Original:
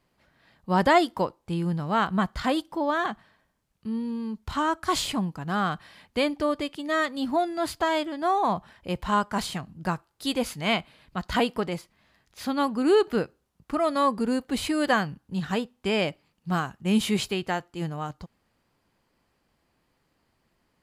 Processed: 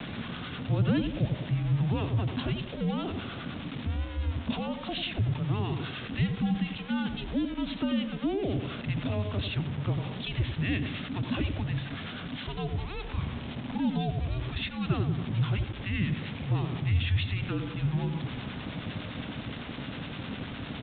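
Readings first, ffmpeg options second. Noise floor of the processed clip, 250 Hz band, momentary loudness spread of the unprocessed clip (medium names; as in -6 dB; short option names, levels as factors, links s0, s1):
-40 dBFS, -3.5 dB, 10 LU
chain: -filter_complex "[0:a]aeval=exprs='val(0)+0.5*0.0501*sgn(val(0))':c=same,afreqshift=-350,acrossover=split=770[s0][s1];[s0]aeval=exprs='val(0)*(1-0.5/2+0.5/2*cos(2*PI*9.8*n/s))':c=same[s2];[s1]aeval=exprs='val(0)*(1-0.5/2-0.5/2*cos(2*PI*9.8*n/s))':c=same[s3];[s2][s3]amix=inputs=2:normalize=0,asplit=2[s4][s5];[s5]adelay=91,lowpass=f=910:p=1,volume=0.422,asplit=2[s6][s7];[s7]adelay=91,lowpass=f=910:p=1,volume=0.49,asplit=2[s8][s9];[s9]adelay=91,lowpass=f=910:p=1,volume=0.49,asplit=2[s10][s11];[s11]adelay=91,lowpass=f=910:p=1,volume=0.49,asplit=2[s12][s13];[s13]adelay=91,lowpass=f=910:p=1,volume=0.49,asplit=2[s14][s15];[s15]adelay=91,lowpass=f=910:p=1,volume=0.49[s16];[s4][s6][s8][s10][s12][s14][s16]amix=inputs=7:normalize=0,asplit=2[s17][s18];[s18]alimiter=limit=0.119:level=0:latency=1:release=94,volume=0.794[s19];[s17][s19]amix=inputs=2:normalize=0,afreqshift=-47,highpass=88,aeval=exprs='val(0)*gte(abs(val(0)),0.0224)':c=same,aresample=8000,aresample=44100,acrossover=split=320|3000[s20][s21][s22];[s21]acompressor=threshold=0.00501:ratio=2[s23];[s20][s23][s22]amix=inputs=3:normalize=0,volume=0.668"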